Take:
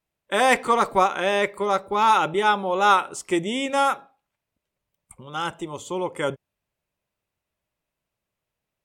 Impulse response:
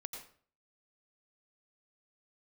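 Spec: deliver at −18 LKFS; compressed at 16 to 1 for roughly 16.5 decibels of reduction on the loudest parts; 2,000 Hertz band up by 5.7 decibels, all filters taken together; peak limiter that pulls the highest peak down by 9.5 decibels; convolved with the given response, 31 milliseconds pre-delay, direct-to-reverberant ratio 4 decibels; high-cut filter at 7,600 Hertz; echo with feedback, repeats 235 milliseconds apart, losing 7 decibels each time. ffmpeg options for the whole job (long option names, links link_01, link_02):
-filter_complex "[0:a]lowpass=7600,equalizer=frequency=2000:width_type=o:gain=7.5,acompressor=threshold=-26dB:ratio=16,alimiter=limit=-21dB:level=0:latency=1,aecho=1:1:235|470|705|940|1175:0.447|0.201|0.0905|0.0407|0.0183,asplit=2[link_01][link_02];[1:a]atrim=start_sample=2205,adelay=31[link_03];[link_02][link_03]afir=irnorm=-1:irlink=0,volume=-1.5dB[link_04];[link_01][link_04]amix=inputs=2:normalize=0,volume=12.5dB"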